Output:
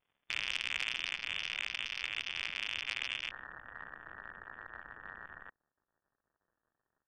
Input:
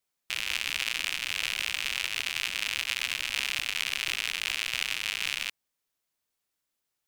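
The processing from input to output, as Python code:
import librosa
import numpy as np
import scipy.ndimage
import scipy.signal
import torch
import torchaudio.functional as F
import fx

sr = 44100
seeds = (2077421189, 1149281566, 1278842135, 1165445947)

y = fx.rider(x, sr, range_db=5, speed_s=2.0)
y = fx.dmg_crackle(y, sr, seeds[0], per_s=140.0, level_db=-55.0)
y = fx.vibrato(y, sr, rate_hz=2.3, depth_cents=81.0)
y = fx.brickwall_lowpass(y, sr, high_hz=fx.steps((0.0, 3600.0), (3.3, 1900.0)))
y = fx.transformer_sat(y, sr, knee_hz=2500.0)
y = y * 10.0 ** (-4.0 / 20.0)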